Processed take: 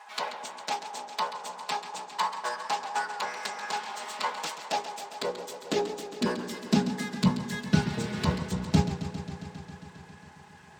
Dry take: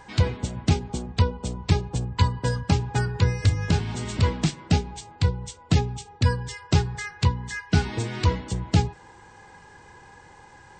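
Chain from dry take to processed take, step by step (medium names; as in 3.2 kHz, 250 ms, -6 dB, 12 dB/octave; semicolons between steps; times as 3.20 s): comb filter that takes the minimum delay 4.7 ms; high-pass sweep 850 Hz -> 100 Hz, 4.35–8.06 s; modulated delay 135 ms, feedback 79%, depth 76 cents, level -11.5 dB; trim -3.5 dB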